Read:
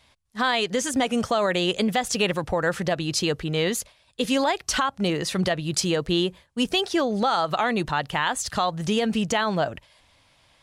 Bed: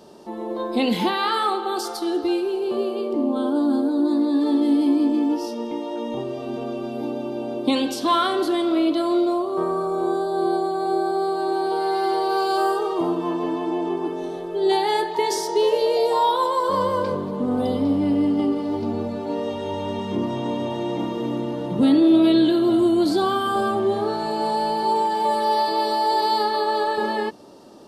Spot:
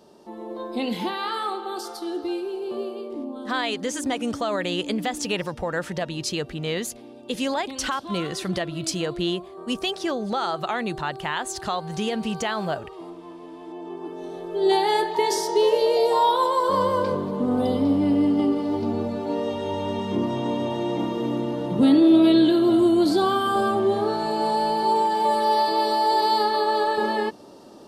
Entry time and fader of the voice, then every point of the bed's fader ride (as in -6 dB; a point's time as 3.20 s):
3.10 s, -3.5 dB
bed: 2.84 s -6 dB
3.77 s -16.5 dB
13.49 s -16.5 dB
14.66 s 0 dB